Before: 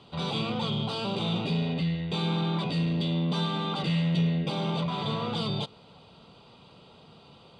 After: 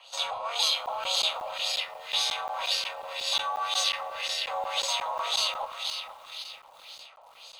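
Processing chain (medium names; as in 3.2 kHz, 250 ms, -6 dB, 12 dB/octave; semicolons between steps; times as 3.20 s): steep high-pass 550 Hz 96 dB/octave; band-passed feedback delay 260 ms, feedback 72%, band-pass 2.4 kHz, level -3.5 dB; frequency shift -36 Hz; careless resampling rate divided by 6×, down none, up zero stuff; LFO low-pass sine 1.9 Hz 870–5200 Hz; crackling interface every 0.18 s, samples 512, zero, from 0.86 s; bit-crushed delay 472 ms, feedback 35%, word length 8-bit, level -13.5 dB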